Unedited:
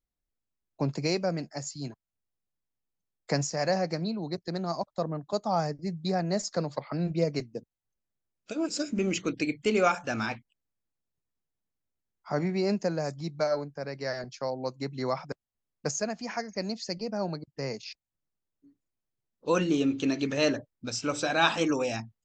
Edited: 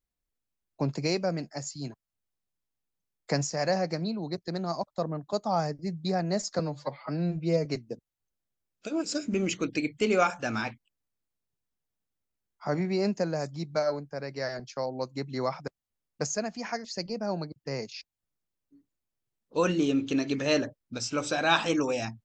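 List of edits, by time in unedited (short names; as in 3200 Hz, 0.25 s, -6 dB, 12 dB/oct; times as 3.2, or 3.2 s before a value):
6.59–7.3 stretch 1.5×
16.49–16.76 cut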